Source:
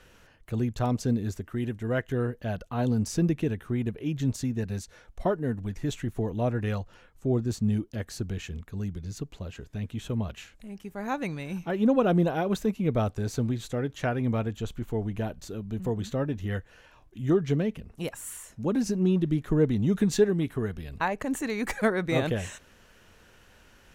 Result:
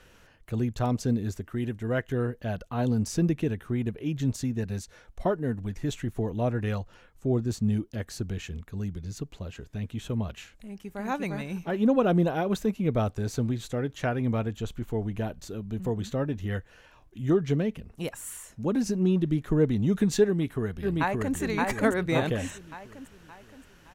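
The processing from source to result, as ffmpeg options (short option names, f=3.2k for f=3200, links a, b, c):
-filter_complex "[0:a]asplit=2[a][b];[b]afade=t=in:st=10.53:d=0.01,afade=t=out:st=11.06:d=0.01,aecho=0:1:350|700|1050|1400|1750:0.891251|0.311938|0.109178|0.0382124|0.0133743[c];[a][c]amix=inputs=2:normalize=0,asplit=2[d][e];[e]afade=t=in:st=20.25:d=0.01,afade=t=out:st=21.36:d=0.01,aecho=0:1:570|1140|1710|2280|2850|3420:0.841395|0.378628|0.170383|0.0766721|0.0345025|0.0155261[f];[d][f]amix=inputs=2:normalize=0"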